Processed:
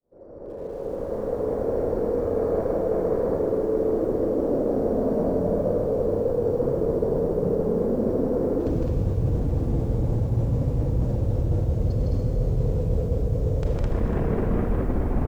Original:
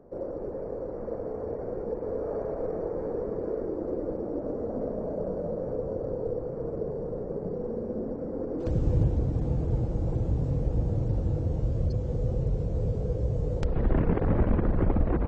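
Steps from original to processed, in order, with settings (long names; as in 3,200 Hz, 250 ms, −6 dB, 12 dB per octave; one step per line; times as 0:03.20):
fade in at the beginning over 4.56 s
convolution reverb RT60 2.1 s, pre-delay 18 ms, DRR 3 dB
in parallel at −2.5 dB: speech leveller within 5 dB
on the sum: loudspeakers that aren't time-aligned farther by 54 metres −2 dB, 72 metres −1 dB
reversed playback
downward compressor 10 to 1, threshold −27 dBFS, peak gain reduction 18 dB
reversed playback
feedback echo at a low word length 289 ms, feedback 35%, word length 9 bits, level −12.5 dB
level +7 dB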